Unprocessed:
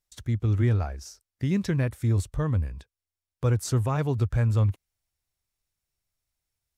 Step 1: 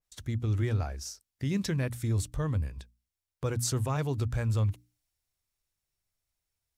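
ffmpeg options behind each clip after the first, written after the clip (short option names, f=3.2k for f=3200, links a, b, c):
-filter_complex "[0:a]bandreject=f=60:t=h:w=6,bandreject=f=120:t=h:w=6,bandreject=f=180:t=h:w=6,bandreject=f=240:t=h:w=6,bandreject=f=300:t=h:w=6,asplit=2[a][b];[b]alimiter=level_in=1dB:limit=-24dB:level=0:latency=1:release=100,volume=-1dB,volume=0dB[c];[a][c]amix=inputs=2:normalize=0,adynamicequalizer=threshold=0.00562:dfrequency=2700:dqfactor=0.7:tfrequency=2700:tqfactor=0.7:attack=5:release=100:ratio=0.375:range=3:mode=boostabove:tftype=highshelf,volume=-7.5dB"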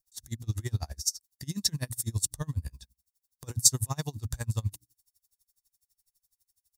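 -af "aecho=1:1:1.1:0.39,aexciter=amount=6.6:drive=4.5:freq=3.9k,aeval=exprs='val(0)*pow(10,-30*(0.5-0.5*cos(2*PI*12*n/s))/20)':c=same"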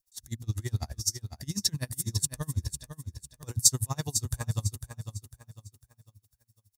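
-af "aecho=1:1:501|1002|1503|2004:0.355|0.121|0.041|0.0139"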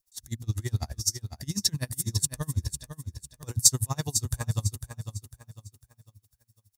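-af "aeval=exprs='0.668*(cos(1*acos(clip(val(0)/0.668,-1,1)))-cos(1*PI/2))+0.0211*(cos(2*acos(clip(val(0)/0.668,-1,1)))-cos(2*PI/2))':c=same,volume=2dB"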